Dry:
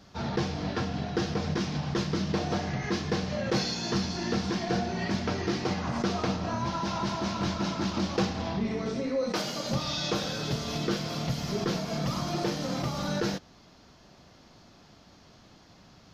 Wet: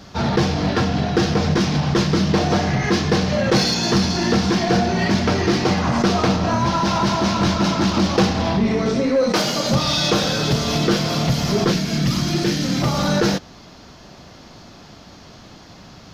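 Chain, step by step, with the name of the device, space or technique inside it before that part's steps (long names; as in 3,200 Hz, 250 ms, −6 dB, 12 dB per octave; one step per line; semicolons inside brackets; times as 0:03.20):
parallel distortion (in parallel at −4 dB: hard clipping −29 dBFS, distortion −10 dB)
0:11.72–0:12.82: on the sum: flat-topped bell 770 Hz −10 dB
level +8.5 dB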